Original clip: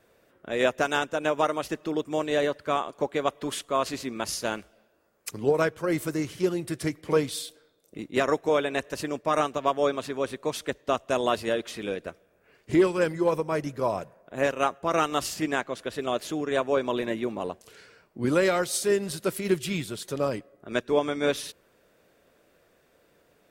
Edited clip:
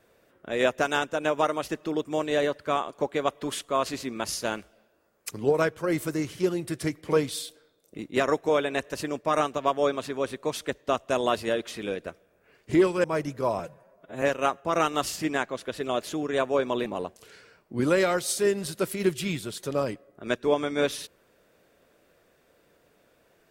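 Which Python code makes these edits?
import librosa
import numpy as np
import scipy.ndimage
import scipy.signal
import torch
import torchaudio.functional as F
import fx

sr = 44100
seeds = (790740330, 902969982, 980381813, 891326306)

y = fx.edit(x, sr, fx.cut(start_s=13.04, length_s=0.39),
    fx.stretch_span(start_s=13.98, length_s=0.42, factor=1.5),
    fx.cut(start_s=17.04, length_s=0.27), tone=tone)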